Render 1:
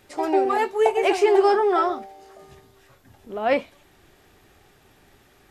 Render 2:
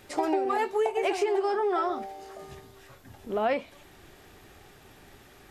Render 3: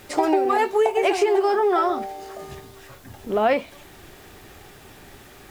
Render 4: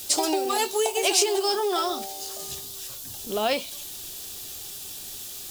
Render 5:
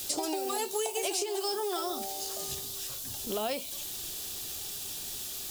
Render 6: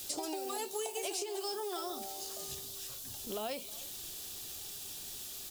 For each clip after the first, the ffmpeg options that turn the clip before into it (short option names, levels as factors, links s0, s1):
-af "acompressor=threshold=0.0501:ratio=12,volume=1.41"
-af "acrusher=bits=9:mix=0:aa=0.000001,volume=2.24"
-af "aexciter=amount=8:drive=6.5:freq=3000,volume=0.501"
-filter_complex "[0:a]acrossover=split=680|6700[s0][s1][s2];[s0]acompressor=threshold=0.02:ratio=4[s3];[s1]acompressor=threshold=0.0126:ratio=4[s4];[s2]acompressor=threshold=0.0158:ratio=4[s5];[s3][s4][s5]amix=inputs=3:normalize=0"
-af "aecho=1:1:316:0.0891,volume=0.501"